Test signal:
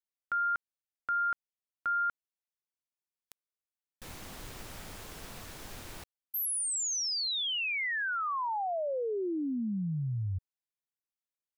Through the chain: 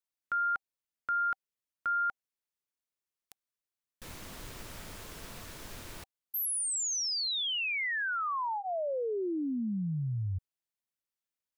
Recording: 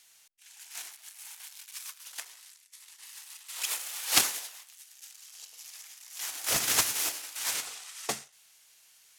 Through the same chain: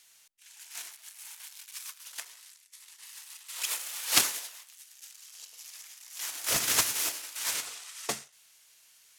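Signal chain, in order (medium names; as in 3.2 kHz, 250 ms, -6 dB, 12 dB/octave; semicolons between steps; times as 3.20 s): band-stop 780 Hz, Q 12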